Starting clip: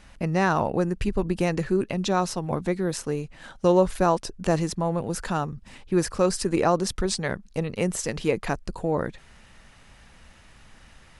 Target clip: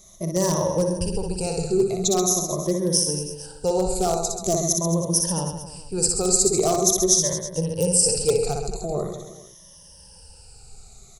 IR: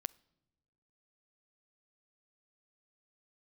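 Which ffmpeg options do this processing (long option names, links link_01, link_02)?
-filter_complex "[0:a]afftfilt=real='re*pow(10,17/40*sin(2*PI*(1.2*log(max(b,1)*sr/1024/100)/log(2)-(-0.44)*(pts-256)/sr)))':imag='im*pow(10,17/40*sin(2*PI*(1.2*log(max(b,1)*sr/1024/100)/log(2)-(-0.44)*(pts-256)/sr)))':win_size=1024:overlap=0.75,asplit=2[link_01][link_02];[link_02]aecho=0:1:60|132|218.4|322.1|446.5:0.631|0.398|0.251|0.158|0.1[link_03];[link_01][link_03]amix=inputs=2:normalize=0,aeval=exprs='0.335*(abs(mod(val(0)/0.335+3,4)-2)-1)':channel_layout=same,firequalizer=gain_entry='entry(180,0);entry(260,-13);entry(380,3);entry(1700,-17);entry(5500,13)':delay=0.05:min_phase=1,volume=-3dB"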